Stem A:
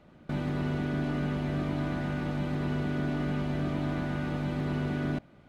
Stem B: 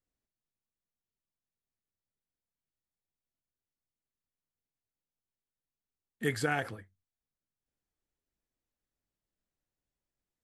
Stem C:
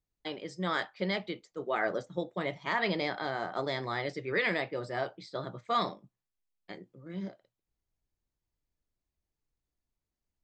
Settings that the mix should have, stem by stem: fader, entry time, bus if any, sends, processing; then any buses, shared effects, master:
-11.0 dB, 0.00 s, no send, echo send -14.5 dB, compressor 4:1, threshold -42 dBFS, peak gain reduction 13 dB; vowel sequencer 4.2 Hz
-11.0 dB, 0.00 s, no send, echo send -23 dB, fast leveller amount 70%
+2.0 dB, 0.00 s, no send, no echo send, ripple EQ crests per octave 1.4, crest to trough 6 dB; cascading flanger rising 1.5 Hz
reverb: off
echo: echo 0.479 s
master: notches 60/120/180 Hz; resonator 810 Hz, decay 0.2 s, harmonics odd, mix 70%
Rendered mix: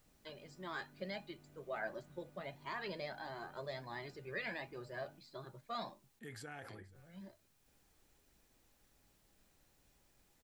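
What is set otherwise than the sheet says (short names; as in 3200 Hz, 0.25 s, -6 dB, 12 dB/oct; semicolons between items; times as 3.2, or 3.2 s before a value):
stem A: missing vowel sequencer 4.2 Hz; master: missing notches 60/120/180 Hz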